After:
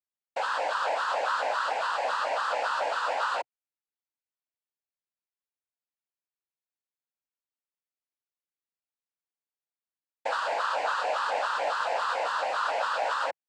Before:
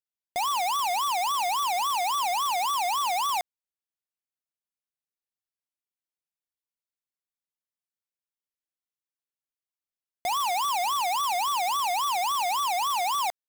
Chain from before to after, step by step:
bass and treble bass −9 dB, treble −14 dB
cochlear-implant simulation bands 8
level −1.5 dB

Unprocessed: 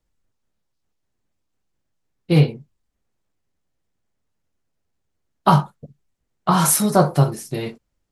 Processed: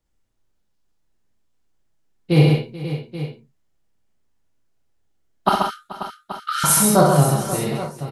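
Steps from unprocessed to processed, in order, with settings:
0:05.49–0:06.64: linear-phase brick-wall high-pass 1,200 Hz
multi-tap delay 61/133/143/433/536/830 ms −6/−4/−18/−17/−12/−13.5 dB
convolution reverb, pre-delay 25 ms, DRR 4 dB
level −1 dB

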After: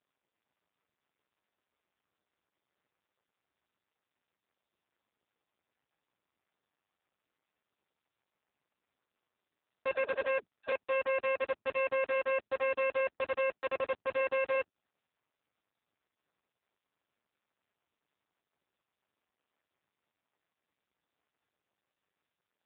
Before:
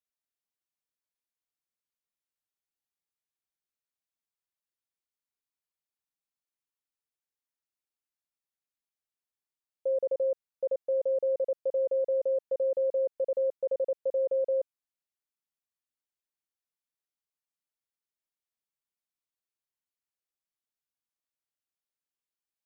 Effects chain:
adaptive Wiener filter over 15 samples
0:09.91–0:10.72: all-pass dispersion lows, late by 123 ms, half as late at 480 Hz
harmonic generator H 3 −8 dB, 4 −12 dB, 5 −37 dB, 7 −12 dB, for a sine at −22.5 dBFS
AMR narrowband 5.9 kbit/s 8,000 Hz

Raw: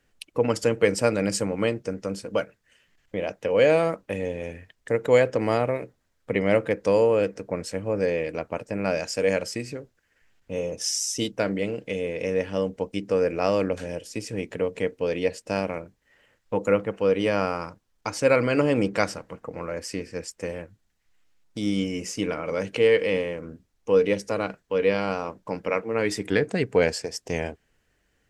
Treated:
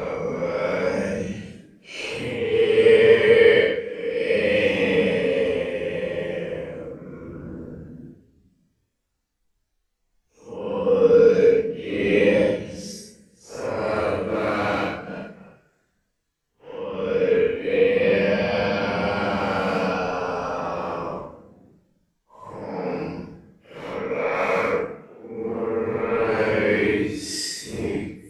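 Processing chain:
transient designer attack −10 dB, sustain −6 dB
extreme stretch with random phases 7.5×, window 0.05 s, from 0:22.48
level +4.5 dB

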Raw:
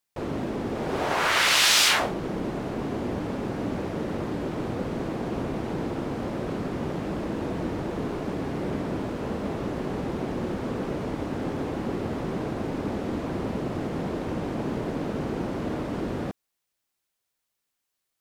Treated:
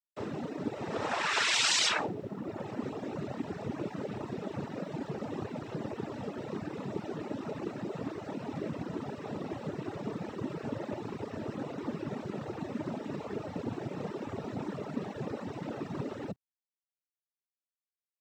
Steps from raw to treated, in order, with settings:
cochlear-implant simulation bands 12
reverb reduction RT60 1.1 s
bit-depth reduction 12 bits, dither none
level −4.5 dB

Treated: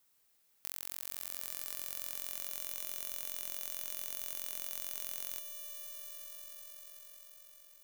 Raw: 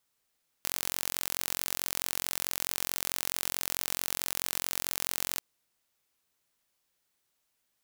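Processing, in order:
downward compressor 2 to 1, threshold −54 dBFS, peak gain reduction 15.5 dB
high-shelf EQ 11,000 Hz +9 dB
echo that builds up and dies away 88 ms, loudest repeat 8, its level −14 dB
level +1 dB

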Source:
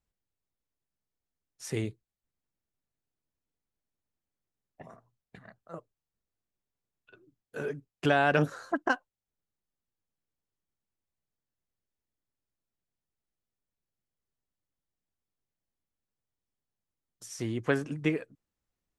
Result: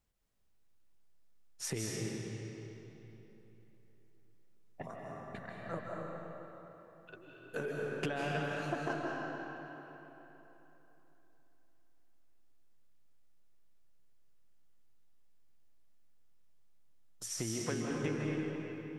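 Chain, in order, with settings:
downward compressor 16 to 1, threshold −39 dBFS, peak gain reduction 20 dB
comb and all-pass reverb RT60 3.6 s, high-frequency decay 0.75×, pre-delay 115 ms, DRR −3 dB
level +4 dB

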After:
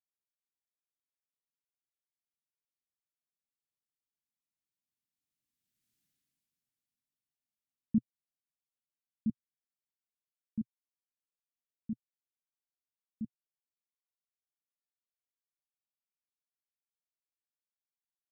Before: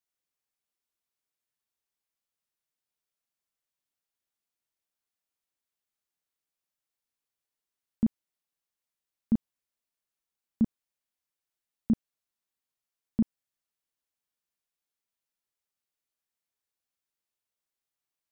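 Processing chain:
source passing by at 0:05.99, 7 m/s, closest 1.4 metres
octave-band graphic EQ 125/250/500/1,000 Hz +9/+10/−10/−12 dB
level +7.5 dB

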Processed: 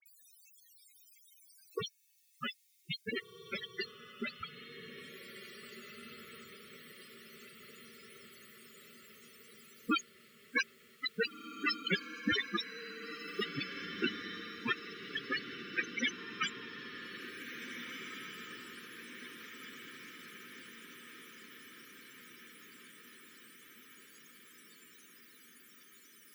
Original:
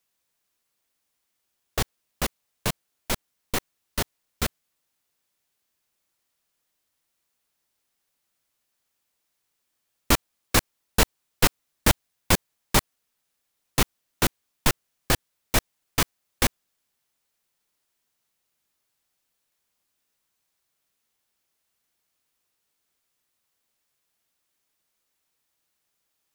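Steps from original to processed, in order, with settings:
slices reordered back to front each 103 ms, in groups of 5
high-pass filter 610 Hz 6 dB per octave
parametric band 790 Hz −10 dB 0.92 octaves
upward compression, threshold −27 dBFS
spectral peaks only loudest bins 8
all-pass dispersion highs, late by 60 ms, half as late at 2,800 Hz
on a send: feedback delay with all-pass diffusion 1,843 ms, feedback 62%, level −8 dB
on the sum: level +5 dB

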